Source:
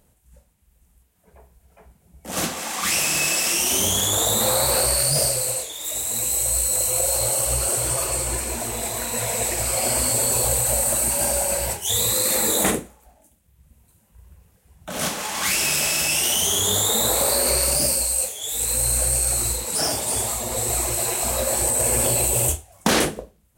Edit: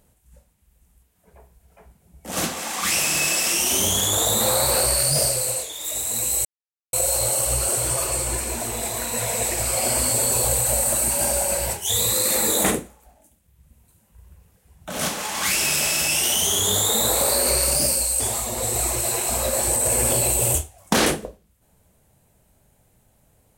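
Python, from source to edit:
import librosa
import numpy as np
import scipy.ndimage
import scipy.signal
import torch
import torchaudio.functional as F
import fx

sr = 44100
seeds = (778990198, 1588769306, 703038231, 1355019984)

y = fx.edit(x, sr, fx.silence(start_s=6.45, length_s=0.48),
    fx.cut(start_s=18.2, length_s=1.94), tone=tone)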